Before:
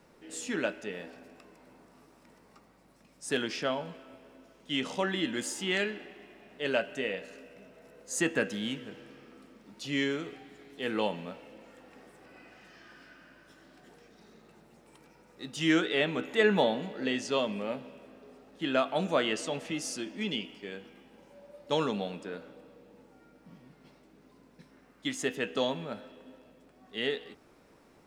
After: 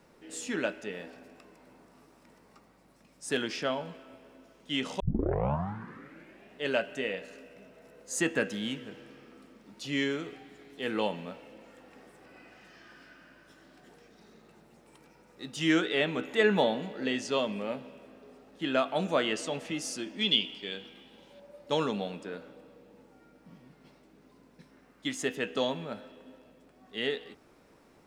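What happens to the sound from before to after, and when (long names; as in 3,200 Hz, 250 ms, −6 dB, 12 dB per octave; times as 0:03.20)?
0:05.00: tape start 1.47 s
0:20.19–0:21.40: parametric band 3,500 Hz +14.5 dB 0.6 octaves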